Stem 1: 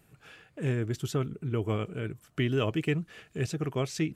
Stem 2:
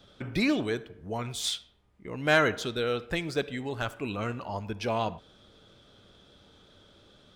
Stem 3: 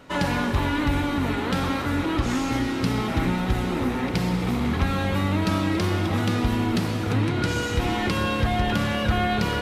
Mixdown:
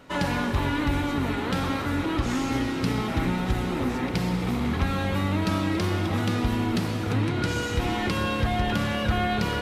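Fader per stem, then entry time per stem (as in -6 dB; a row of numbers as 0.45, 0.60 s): -11.0 dB, off, -2.0 dB; 0.00 s, off, 0.00 s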